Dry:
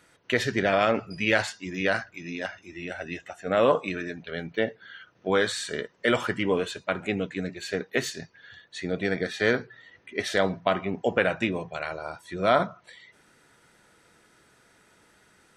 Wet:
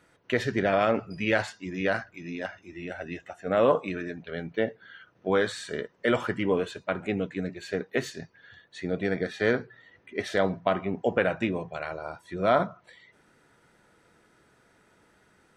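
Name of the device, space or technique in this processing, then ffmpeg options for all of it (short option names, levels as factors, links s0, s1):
behind a face mask: -af "highshelf=f=2100:g=-8"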